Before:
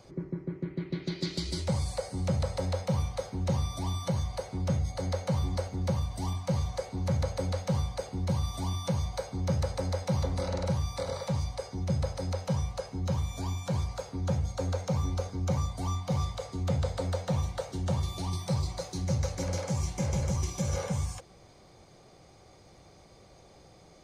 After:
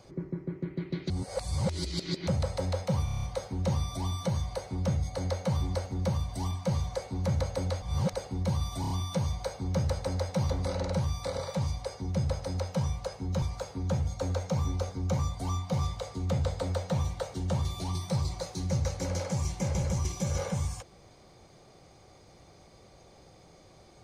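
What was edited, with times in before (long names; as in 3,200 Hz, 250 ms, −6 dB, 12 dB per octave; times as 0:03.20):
0:01.10–0:02.27: reverse
0:03.05: stutter 0.03 s, 7 plays
0:07.64–0:07.95: reverse
0:08.63: stutter 0.03 s, 4 plays
0:13.15–0:13.80: remove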